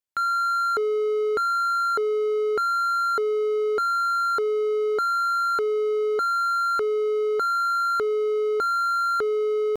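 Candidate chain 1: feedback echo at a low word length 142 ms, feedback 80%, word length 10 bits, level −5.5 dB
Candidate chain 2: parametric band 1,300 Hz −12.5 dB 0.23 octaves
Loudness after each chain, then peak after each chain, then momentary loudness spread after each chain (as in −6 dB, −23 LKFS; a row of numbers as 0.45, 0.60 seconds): −17.0, −26.0 LKFS; −10.5, −17.0 dBFS; 5, 5 LU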